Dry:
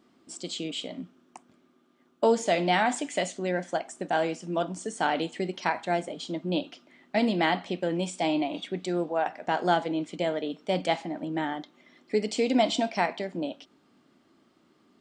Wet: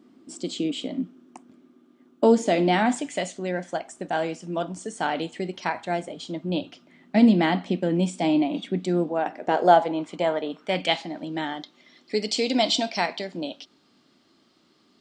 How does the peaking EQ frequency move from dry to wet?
peaking EQ +11 dB 1.2 oct
2.80 s 270 Hz
3.26 s 67 Hz
6.25 s 67 Hz
7.21 s 220 Hz
9.17 s 220 Hz
9.96 s 1 kHz
10.51 s 1 kHz
11.04 s 4.5 kHz

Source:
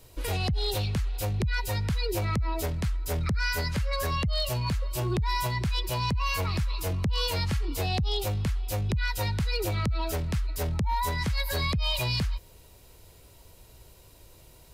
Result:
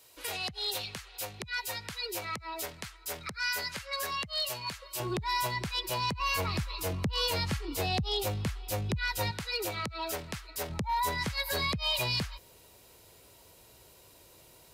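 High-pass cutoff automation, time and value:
high-pass 6 dB/octave
1.2 kHz
from 5.00 s 350 Hz
from 6.20 s 160 Hz
from 9.31 s 580 Hz
from 10.70 s 250 Hz

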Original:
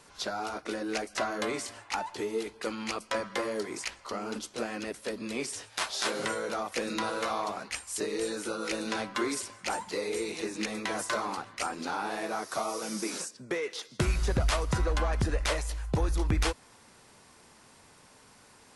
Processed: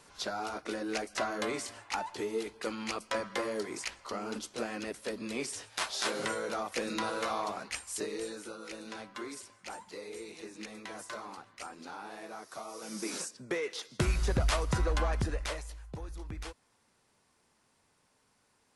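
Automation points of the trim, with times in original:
7.89 s -2 dB
8.62 s -11 dB
12.68 s -11 dB
13.14 s -1.5 dB
15.09 s -1.5 dB
15.99 s -14.5 dB

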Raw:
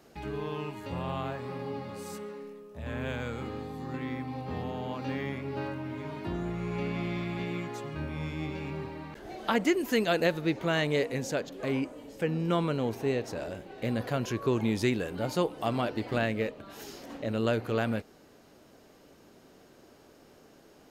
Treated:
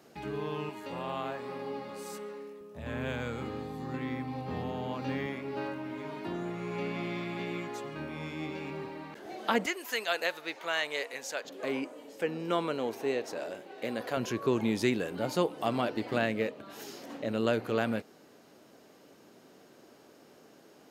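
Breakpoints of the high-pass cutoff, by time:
120 Hz
from 0.69 s 250 Hz
from 2.61 s 90 Hz
from 5.26 s 210 Hz
from 9.66 s 790 Hz
from 11.45 s 320 Hz
from 14.17 s 150 Hz

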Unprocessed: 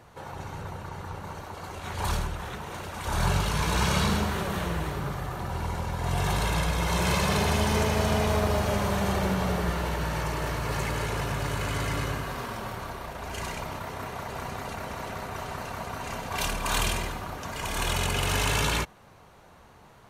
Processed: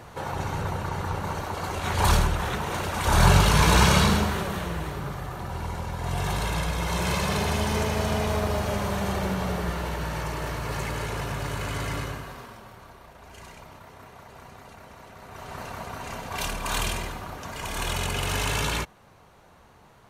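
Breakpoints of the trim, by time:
3.72 s +8 dB
4.63 s -1 dB
11.96 s -1 dB
12.65 s -11 dB
15.15 s -11 dB
15.60 s -1 dB

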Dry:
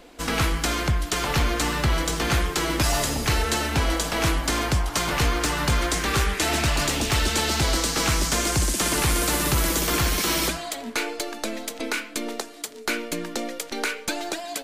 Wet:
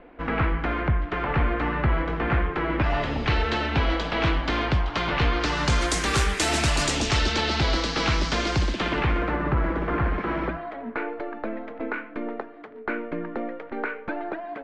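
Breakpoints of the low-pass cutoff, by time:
low-pass 24 dB/octave
2.68 s 2.2 kHz
3.34 s 3.7 kHz
5.30 s 3.7 kHz
5.90 s 9.7 kHz
6.77 s 9.7 kHz
7.42 s 4.6 kHz
8.57 s 4.6 kHz
9.41 s 1.8 kHz

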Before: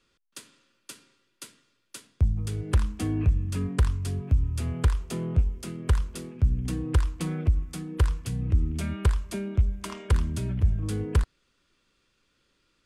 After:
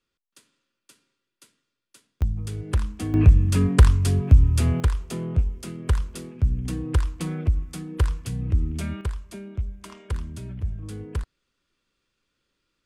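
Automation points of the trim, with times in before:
-11 dB
from 2.22 s -0.5 dB
from 3.14 s +9 dB
from 4.80 s +1 dB
from 9.01 s -6 dB

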